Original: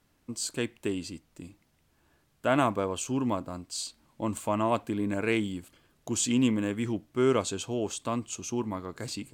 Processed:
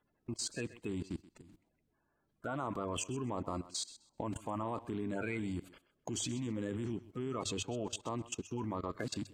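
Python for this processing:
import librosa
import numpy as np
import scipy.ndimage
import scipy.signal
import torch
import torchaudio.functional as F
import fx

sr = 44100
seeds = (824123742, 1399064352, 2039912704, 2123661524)

p1 = fx.spec_quant(x, sr, step_db=30)
p2 = fx.high_shelf(p1, sr, hz=5000.0, db=-10.0)
p3 = fx.hum_notches(p2, sr, base_hz=50, count=2)
p4 = fx.level_steps(p3, sr, step_db=21)
p5 = p4 + fx.echo_thinned(p4, sr, ms=129, feedback_pct=19, hz=320.0, wet_db=-16.0, dry=0)
y = F.gain(torch.from_numpy(p5), 4.5).numpy()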